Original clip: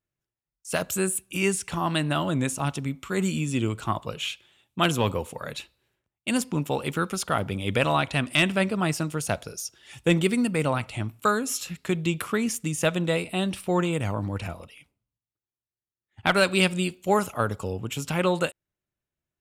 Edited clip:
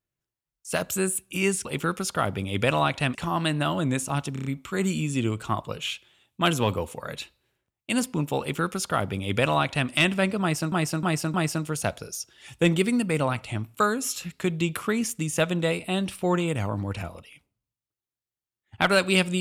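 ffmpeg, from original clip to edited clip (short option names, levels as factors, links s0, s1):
-filter_complex "[0:a]asplit=10[s0][s1][s2][s3][s4][s5][s6][s7][s8][s9];[s0]atrim=end=1.652[s10];[s1]atrim=start=6.778:end=8.282[s11];[s2]atrim=start=1.648:end=2.862[s12];[s3]atrim=start=2.828:end=2.862[s13];[s4]atrim=start=2.828:end=2.862[s14];[s5]atrim=start=2.828:end=2.862[s15];[s6]atrim=start=2.828:end=9.102[s16];[s7]atrim=start=8.788:end=9.102[s17];[s8]atrim=start=8.788:end=9.102[s18];[s9]atrim=start=8.788[s19];[s10][s11]acrossfade=d=0.004:c1=hsin:c2=hsin[s20];[s20][s12]acrossfade=d=0.004:c1=hsin:c2=hsin[s21];[s21][s13]acrossfade=d=0.004:c1=hsin:c2=hsin[s22];[s22][s14]acrossfade=d=0.004:c1=hsin:c2=hsin[s23];[s23][s15]acrossfade=d=0.004:c1=hsin:c2=hsin[s24];[s24][s16]acrossfade=d=0.004:c1=hsin:c2=hsin[s25];[s25][s17]acrossfade=d=0.004:c1=hsin:c2=hsin[s26];[s26][s18]acrossfade=d=0.004:c1=hsin:c2=hsin[s27];[s27][s19]acrossfade=d=0.004:c1=hsin:c2=hsin"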